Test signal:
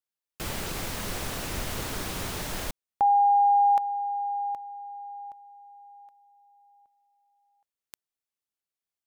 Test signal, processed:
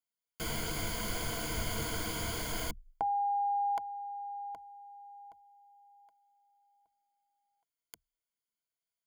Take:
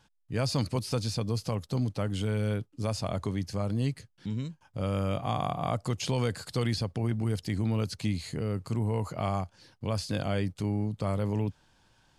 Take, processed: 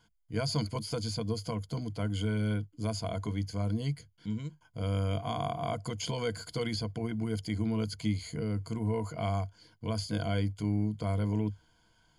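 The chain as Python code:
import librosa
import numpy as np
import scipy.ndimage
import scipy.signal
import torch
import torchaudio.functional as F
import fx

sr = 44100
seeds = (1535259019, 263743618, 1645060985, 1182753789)

y = fx.ripple_eq(x, sr, per_octave=1.8, db=13)
y = y * 10.0 ** (-5.0 / 20.0)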